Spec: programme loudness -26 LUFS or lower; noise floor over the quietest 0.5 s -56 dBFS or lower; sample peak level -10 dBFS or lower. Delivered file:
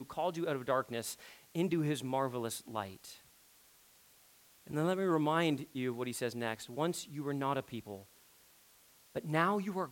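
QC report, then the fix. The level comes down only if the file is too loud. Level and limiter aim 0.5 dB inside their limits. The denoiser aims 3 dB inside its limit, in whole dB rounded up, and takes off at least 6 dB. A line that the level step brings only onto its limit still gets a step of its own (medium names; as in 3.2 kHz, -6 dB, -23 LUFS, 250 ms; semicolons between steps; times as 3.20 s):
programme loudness -36.0 LUFS: pass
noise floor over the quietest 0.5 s -64 dBFS: pass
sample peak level -16.0 dBFS: pass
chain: none needed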